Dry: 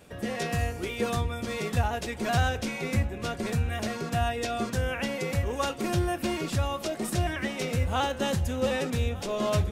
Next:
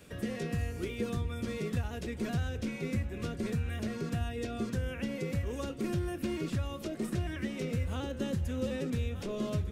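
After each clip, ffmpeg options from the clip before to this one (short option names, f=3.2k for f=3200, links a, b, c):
-filter_complex "[0:a]equalizer=f=780:t=o:w=0.8:g=-8.5,acrossover=split=510|2800[a][b][c];[a]acompressor=threshold=-30dB:ratio=4[d];[b]acompressor=threshold=-47dB:ratio=4[e];[c]acompressor=threshold=-53dB:ratio=4[f];[d][e][f]amix=inputs=3:normalize=0"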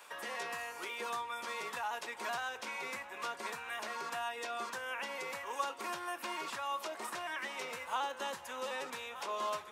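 -af "highpass=f=940:t=q:w=4.9,volume=2dB"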